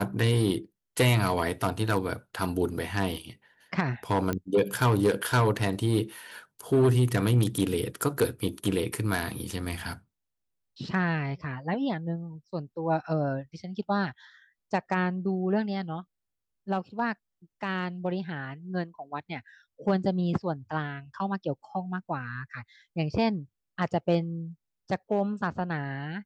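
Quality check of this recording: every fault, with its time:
4.33 pop -15 dBFS

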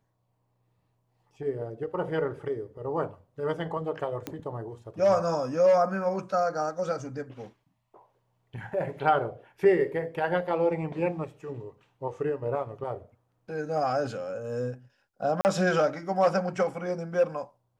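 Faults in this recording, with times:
4.27 pop -18 dBFS
15.41–15.45 gap 39 ms

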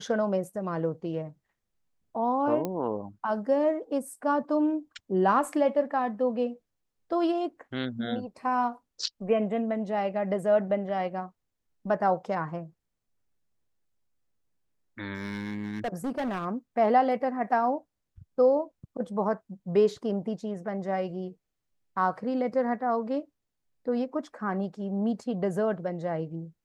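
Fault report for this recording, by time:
2.65 pop -17 dBFS
15.14–16.45 clipped -27 dBFS

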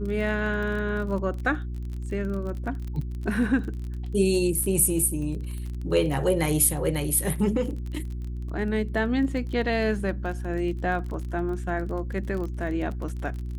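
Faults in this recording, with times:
crackle 28/s -33 dBFS
hum 60 Hz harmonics 6 -32 dBFS

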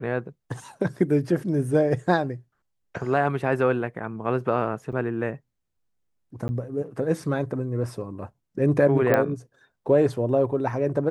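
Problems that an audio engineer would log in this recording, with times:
4.92–4.93 gap 6.9 ms
6.48–6.49 gap 10 ms
9.14 pop -9 dBFS

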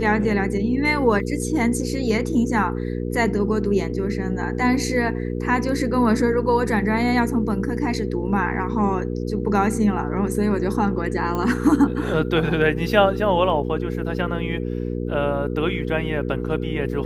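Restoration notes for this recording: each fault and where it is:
hum 60 Hz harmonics 8 -26 dBFS
11.35 pop -14 dBFS

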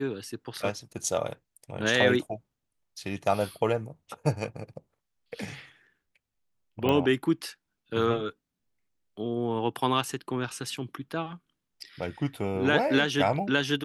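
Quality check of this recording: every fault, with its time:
6.89 pop -15 dBFS

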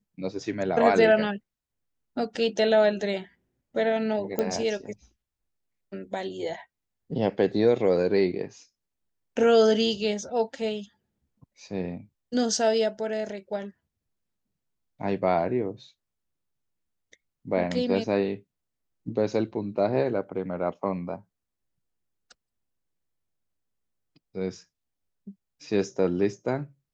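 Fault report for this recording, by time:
4.39 pop -13 dBFS

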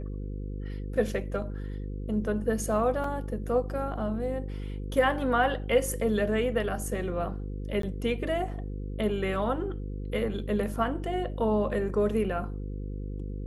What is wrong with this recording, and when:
buzz 50 Hz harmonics 10 -35 dBFS
3.04 gap 3.4 ms
7.82–7.83 gap 13 ms

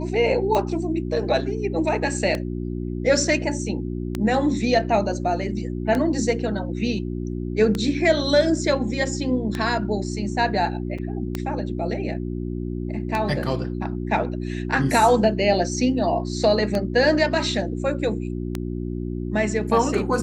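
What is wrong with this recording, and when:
hum 60 Hz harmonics 6 -28 dBFS
tick 33 1/3 rpm -11 dBFS
10.98–10.99 gap 5.3 ms

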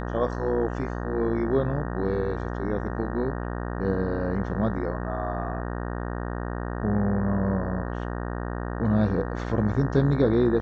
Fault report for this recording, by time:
buzz 60 Hz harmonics 31 -31 dBFS

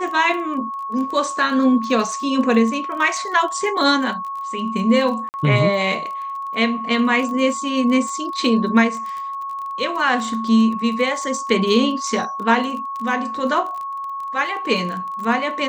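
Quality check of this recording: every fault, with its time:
crackle 20/s -27 dBFS
tone 1100 Hz -25 dBFS
5.29–5.34 gap 49 ms

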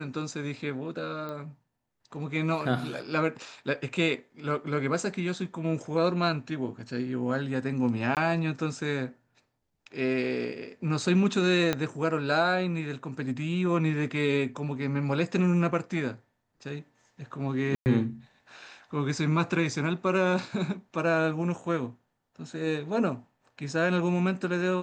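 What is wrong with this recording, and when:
1.29 pop -25 dBFS
8.15–8.17 gap 18 ms
11.73 pop -12 dBFS
17.75–17.86 gap 0.109 s

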